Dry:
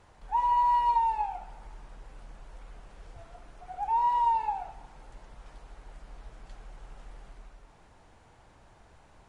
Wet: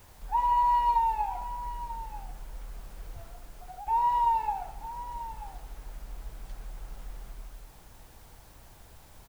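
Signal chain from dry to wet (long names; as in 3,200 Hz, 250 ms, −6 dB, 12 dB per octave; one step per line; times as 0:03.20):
low-shelf EQ 150 Hz +6.5 dB
0:03.27–0:03.87: downward compressor, threshold −41 dBFS, peak gain reduction 12 dB
bit-depth reduction 10 bits, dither triangular
on a send: single-tap delay 938 ms −14 dB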